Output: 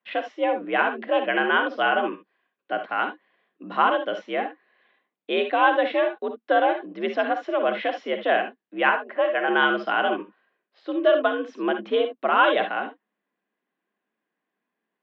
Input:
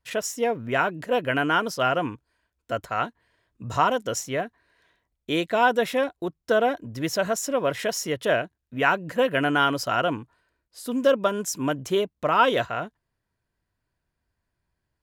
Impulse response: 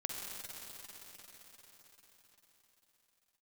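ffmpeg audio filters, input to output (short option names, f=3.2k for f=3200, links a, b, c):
-filter_complex "[0:a]asettb=1/sr,asplit=3[a][b][c];[a]atrim=end=8.894[d];[b]atrim=start=8.89:end=9.48,asetpts=PTS-STARTPTS,afade=t=in:d=0.004:c=qsin,afade=t=out:st=0.586:d=0.004:c=qsin,acrossover=split=320 2200:gain=0.141 1 0.251[e][f][g];[e][f][g]amix=inputs=3:normalize=0[h];[c]atrim=start=9.476[i];[d][h]acrossfade=d=0.004:c1=hsin:c2=qsin[j];[j][i]acrossfade=d=0.004:c1=qsin:c2=hsin[k];[1:a]atrim=start_sample=2205,atrim=end_sample=3528[l];[k][l]afir=irnorm=-1:irlink=0,highpass=f=160:t=q:w=0.5412,highpass=f=160:t=q:w=1.307,lowpass=f=3.4k:t=q:w=0.5176,lowpass=f=3.4k:t=q:w=0.7071,lowpass=f=3.4k:t=q:w=1.932,afreqshift=69,volume=3dB"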